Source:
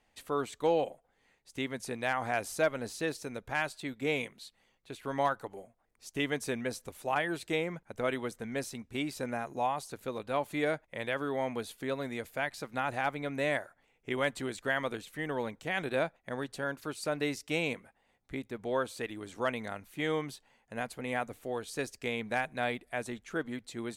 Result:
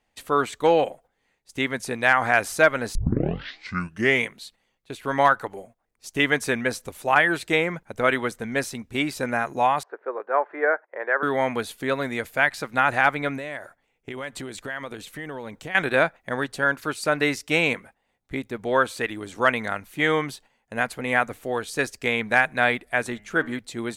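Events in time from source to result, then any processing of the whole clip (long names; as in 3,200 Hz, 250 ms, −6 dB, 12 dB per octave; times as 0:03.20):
0:02.95: tape start 1.31 s
0:09.83–0:11.23: Chebyshev band-pass filter 380–1,700 Hz, order 3
0:13.37–0:15.75: downward compressor, threshold −39 dBFS
0:23.01–0:23.59: hum removal 103.9 Hz, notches 29
whole clip: noise gate −57 dBFS, range −9 dB; dynamic equaliser 1,600 Hz, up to +8 dB, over −47 dBFS, Q 1; level +8 dB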